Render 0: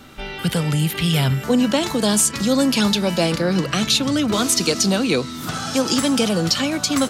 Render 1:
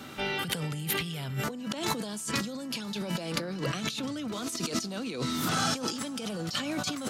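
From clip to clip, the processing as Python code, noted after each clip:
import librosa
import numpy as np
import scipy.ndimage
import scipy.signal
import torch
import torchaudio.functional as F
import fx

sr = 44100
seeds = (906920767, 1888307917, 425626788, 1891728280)

y = scipy.signal.sosfilt(scipy.signal.butter(2, 110.0, 'highpass', fs=sr, output='sos'), x)
y = fx.over_compress(y, sr, threshold_db=-27.0, ratio=-1.0)
y = F.gain(torch.from_numpy(y), -6.5).numpy()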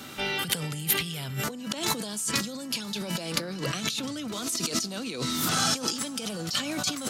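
y = fx.high_shelf(x, sr, hz=3300.0, db=8.0)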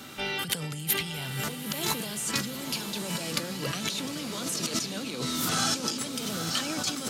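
y = fx.echo_diffused(x, sr, ms=943, feedback_pct=54, wet_db=-7.0)
y = F.gain(torch.from_numpy(y), -2.0).numpy()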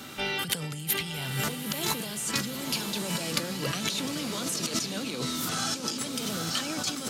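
y = fx.rider(x, sr, range_db=10, speed_s=0.5)
y = fx.quant_dither(y, sr, seeds[0], bits=12, dither='none')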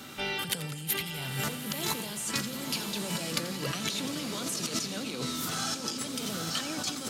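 y = fx.echo_feedback(x, sr, ms=86, feedback_pct=58, wet_db=-14.0)
y = F.gain(torch.from_numpy(y), -2.5).numpy()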